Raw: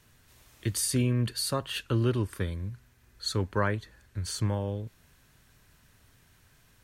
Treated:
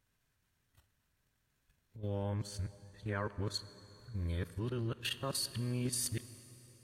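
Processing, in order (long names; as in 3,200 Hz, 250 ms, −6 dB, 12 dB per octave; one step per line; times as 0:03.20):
played backwards from end to start
transient designer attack −3 dB, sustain −8 dB
output level in coarse steps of 12 dB
noise reduction from a noise print of the clip's start 7 dB
dense smooth reverb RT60 3.8 s, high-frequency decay 0.85×, DRR 14 dB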